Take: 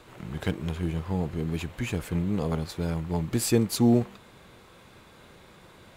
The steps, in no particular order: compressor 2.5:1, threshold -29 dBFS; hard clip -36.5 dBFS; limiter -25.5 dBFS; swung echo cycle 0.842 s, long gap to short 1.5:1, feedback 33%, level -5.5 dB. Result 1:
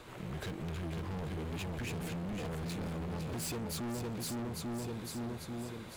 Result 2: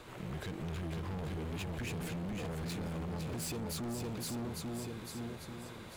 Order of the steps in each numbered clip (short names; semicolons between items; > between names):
swung echo > compressor > hard clip > limiter; compressor > swung echo > limiter > hard clip